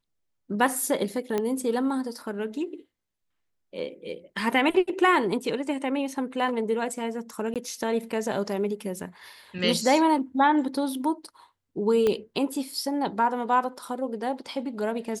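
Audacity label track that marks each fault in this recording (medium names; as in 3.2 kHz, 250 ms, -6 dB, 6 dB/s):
1.380000	1.380000	pop -14 dBFS
7.540000	7.560000	dropout 17 ms
12.070000	12.070000	pop -13 dBFS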